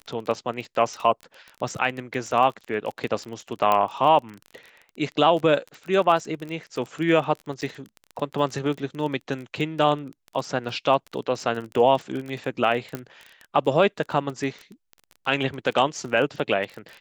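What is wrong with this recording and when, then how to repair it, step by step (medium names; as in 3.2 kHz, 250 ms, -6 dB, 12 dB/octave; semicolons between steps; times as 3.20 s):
crackle 24 per s -30 dBFS
3.72 s: pop -9 dBFS
7.61–7.62 s: dropout 8.3 ms
12.95 s: pop -16 dBFS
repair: de-click; interpolate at 7.61 s, 8.3 ms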